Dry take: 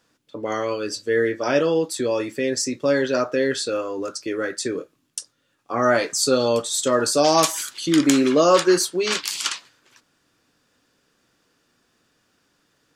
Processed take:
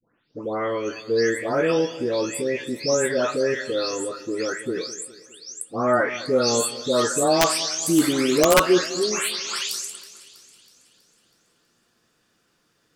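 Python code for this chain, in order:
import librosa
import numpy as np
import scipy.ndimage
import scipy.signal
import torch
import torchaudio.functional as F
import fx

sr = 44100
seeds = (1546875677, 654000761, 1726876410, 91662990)

y = fx.spec_delay(x, sr, highs='late', ms=433)
y = fx.echo_split(y, sr, split_hz=2500.0, low_ms=206, high_ms=323, feedback_pct=52, wet_db=-16)
y = (np.mod(10.0 ** (7.5 / 20.0) * y + 1.0, 2.0) - 1.0) / 10.0 ** (7.5 / 20.0)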